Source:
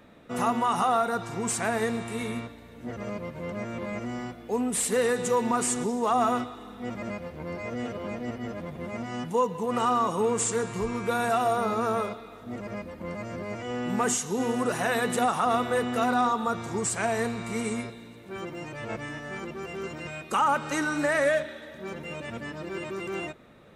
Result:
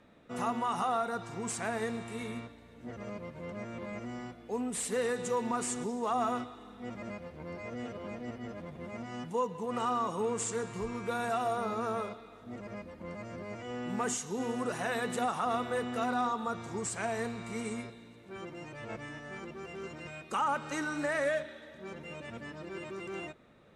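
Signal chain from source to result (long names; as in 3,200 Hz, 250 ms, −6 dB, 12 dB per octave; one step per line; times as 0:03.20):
low-pass filter 10,000 Hz 12 dB per octave
level −7 dB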